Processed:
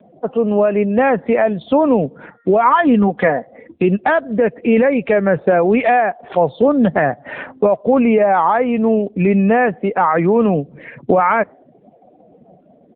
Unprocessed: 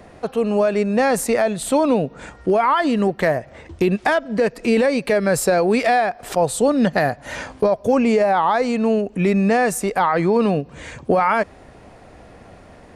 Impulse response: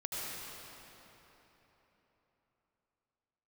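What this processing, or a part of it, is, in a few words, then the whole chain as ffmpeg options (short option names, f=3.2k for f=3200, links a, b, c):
mobile call with aggressive noise cancelling: -filter_complex "[0:a]asplit=3[a][b][c];[a]afade=t=out:st=2.63:d=0.02[d];[b]aecho=1:1:4.1:0.55,afade=t=in:st=2.63:d=0.02,afade=t=out:st=3.82:d=0.02[e];[c]afade=t=in:st=3.82:d=0.02[f];[d][e][f]amix=inputs=3:normalize=0,highpass=f=130:w=0.5412,highpass=f=130:w=1.3066,afftdn=nr=26:nf=-36,volume=4dB" -ar 8000 -c:a libopencore_amrnb -b:a 7950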